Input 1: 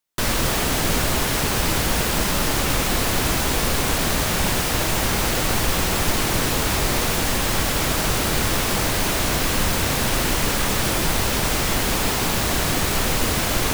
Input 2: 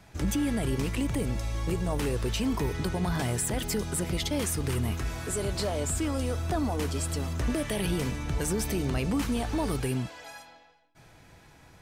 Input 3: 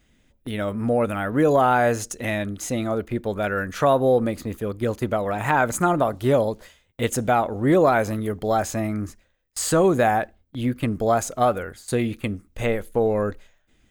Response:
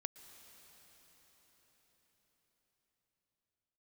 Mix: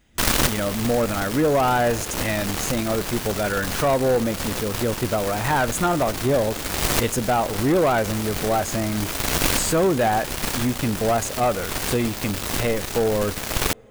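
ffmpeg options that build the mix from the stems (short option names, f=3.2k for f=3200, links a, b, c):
-filter_complex "[0:a]acrusher=bits=2:mix=0:aa=0.5,volume=2.5dB[a];[1:a]volume=-16.5dB[b];[2:a]asoftclip=type=tanh:threshold=-15dB,volume=-1dB,asplit=3[c][d][e];[d]volume=-6.5dB[f];[e]apad=whole_len=605493[g];[a][g]sidechaincompress=threshold=-35dB:ratio=5:attack=9.5:release=531[h];[3:a]atrim=start_sample=2205[i];[f][i]afir=irnorm=-1:irlink=0[j];[h][b][c][j]amix=inputs=4:normalize=0"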